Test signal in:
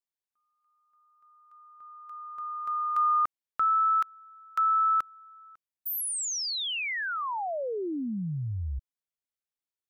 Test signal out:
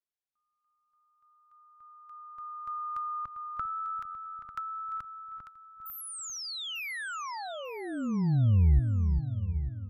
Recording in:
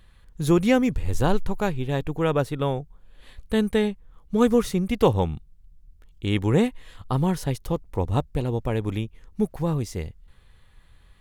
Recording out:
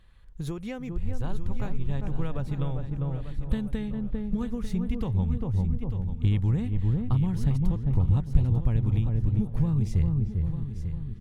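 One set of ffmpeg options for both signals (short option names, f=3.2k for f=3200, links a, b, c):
-filter_complex "[0:a]highshelf=f=7.7k:g=-7.5,asplit=2[a][b];[b]adelay=398,lowpass=f=850:p=1,volume=-6dB,asplit=2[c][d];[d]adelay=398,lowpass=f=850:p=1,volume=0.34,asplit=2[e][f];[f]adelay=398,lowpass=f=850:p=1,volume=0.34,asplit=2[g][h];[h]adelay=398,lowpass=f=850:p=1,volume=0.34[i];[c][e][g][i]amix=inputs=4:normalize=0[j];[a][j]amix=inputs=2:normalize=0,acompressor=threshold=-30dB:ratio=6:attack=65:release=176:knee=1:detection=rms,asplit=2[k][l];[l]aecho=0:1:895|1790|2685:0.282|0.0705|0.0176[m];[k][m]amix=inputs=2:normalize=0,asubboost=boost=8.5:cutoff=150,volume=-4.5dB"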